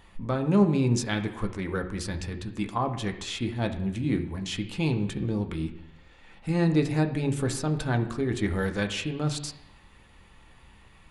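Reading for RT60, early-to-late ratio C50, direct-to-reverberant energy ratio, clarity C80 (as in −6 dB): 0.85 s, 11.0 dB, 4.0 dB, 13.5 dB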